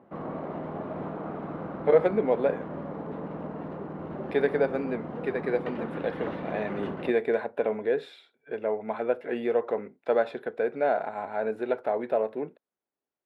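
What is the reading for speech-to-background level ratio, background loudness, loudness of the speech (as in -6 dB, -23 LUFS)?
8.0 dB, -37.0 LUFS, -29.0 LUFS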